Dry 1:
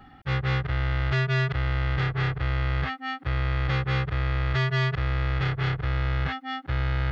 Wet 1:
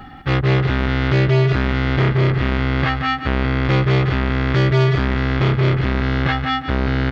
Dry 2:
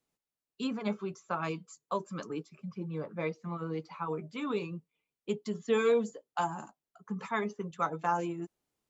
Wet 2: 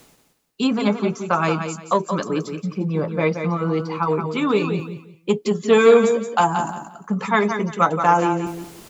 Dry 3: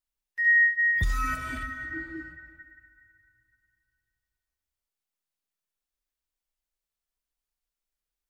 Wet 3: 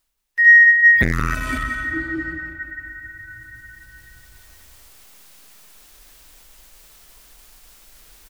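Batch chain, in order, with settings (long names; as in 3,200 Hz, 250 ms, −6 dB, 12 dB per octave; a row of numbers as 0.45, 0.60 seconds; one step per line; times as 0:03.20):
reversed playback
upward compression, threshold −37 dBFS
reversed playback
repeating echo 175 ms, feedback 24%, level −8 dB
saturating transformer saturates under 490 Hz
normalise the peak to −2 dBFS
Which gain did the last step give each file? +12.0, +14.5, +11.5 decibels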